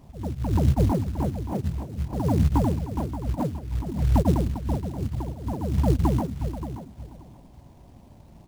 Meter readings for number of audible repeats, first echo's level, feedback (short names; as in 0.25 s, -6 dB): 2, -11.5 dB, 17%